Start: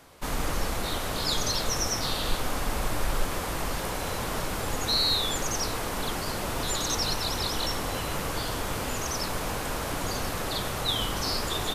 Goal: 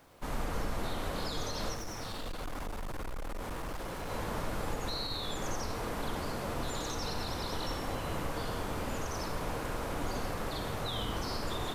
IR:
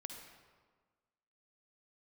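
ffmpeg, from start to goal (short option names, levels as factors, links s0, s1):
-filter_complex "[0:a]acrusher=bits=8:mix=0:aa=0.000001[s0];[1:a]atrim=start_sample=2205,afade=t=out:st=0.23:d=0.01,atrim=end_sample=10584[s1];[s0][s1]afir=irnorm=-1:irlink=0,alimiter=limit=0.075:level=0:latency=1:release=117,asettb=1/sr,asplit=3[s2][s3][s4];[s2]atrim=end=1.744[s5];[s3]atrim=start=1.74:end=4.1,asetpts=PTS-STARTPTS,afade=t=in:d=0.004:c=qsin,afade=t=out:st=2.356:d=0.004:c=qsin,asoftclip=type=hard:threshold=0.0188[s6];[s4]atrim=start=4.096[s7];[s5][s6]acrossfade=d=0.004:c1=hsin:c2=qsin[s8];[s8][s7]acrossfade=d=0.004:c1=qsin:c2=hsin,highshelf=f=2400:g=-8.5"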